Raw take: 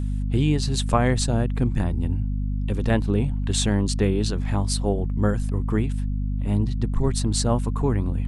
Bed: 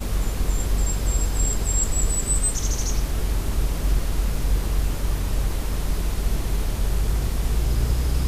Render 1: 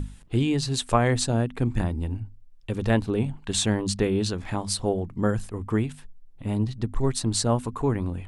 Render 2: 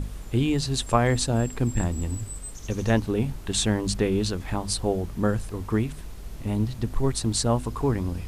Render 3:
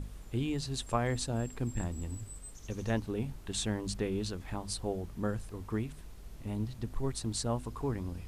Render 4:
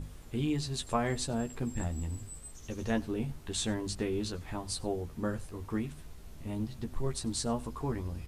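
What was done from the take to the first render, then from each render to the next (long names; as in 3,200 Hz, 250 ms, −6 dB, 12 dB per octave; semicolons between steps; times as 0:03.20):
mains-hum notches 50/100/150/200/250 Hz
mix in bed −15.5 dB
level −10 dB
double-tracking delay 13 ms −5 dB; single-tap delay 95 ms −23.5 dB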